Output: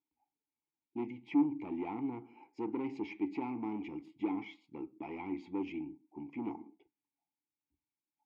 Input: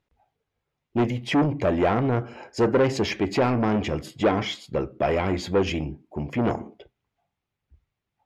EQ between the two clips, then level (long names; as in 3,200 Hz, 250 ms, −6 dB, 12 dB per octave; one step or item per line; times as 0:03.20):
formant filter u
−4.5 dB